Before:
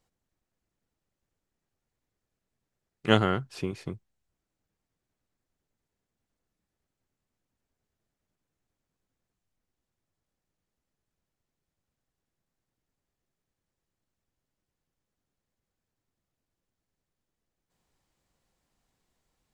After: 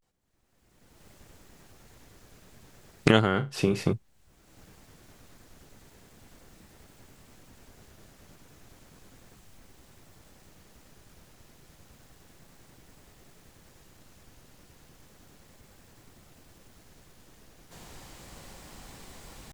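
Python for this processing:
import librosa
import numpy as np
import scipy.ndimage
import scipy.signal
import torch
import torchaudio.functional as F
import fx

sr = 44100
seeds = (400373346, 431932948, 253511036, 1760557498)

y = fx.recorder_agc(x, sr, target_db=-12.0, rise_db_per_s=28.0, max_gain_db=30)
y = fx.vibrato(y, sr, rate_hz=0.33, depth_cents=78.0)
y = fx.room_flutter(y, sr, wall_m=6.1, rt60_s=0.22, at=(3.31, 3.93))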